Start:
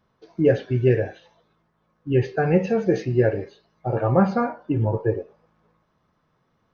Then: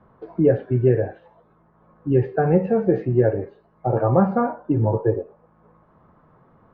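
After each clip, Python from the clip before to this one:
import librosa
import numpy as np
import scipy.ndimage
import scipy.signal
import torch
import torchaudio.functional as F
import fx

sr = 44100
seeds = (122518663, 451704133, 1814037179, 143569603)

y = scipy.signal.sosfilt(scipy.signal.cheby1(2, 1.0, 1100.0, 'lowpass', fs=sr, output='sos'), x)
y = fx.band_squash(y, sr, depth_pct=40)
y = y * librosa.db_to_amplitude(2.5)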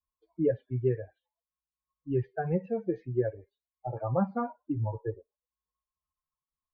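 y = fx.bin_expand(x, sr, power=2.0)
y = y * librosa.db_to_amplitude(-7.5)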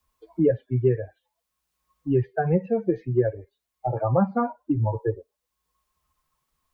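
y = fx.band_squash(x, sr, depth_pct=40)
y = y * librosa.db_to_amplitude(7.5)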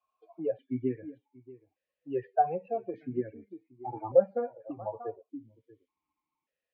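y = x + 10.0 ** (-18.5 / 20.0) * np.pad(x, (int(635 * sr / 1000.0), 0))[:len(x)]
y = fx.vowel_held(y, sr, hz=1.7)
y = y * librosa.db_to_amplitude(4.5)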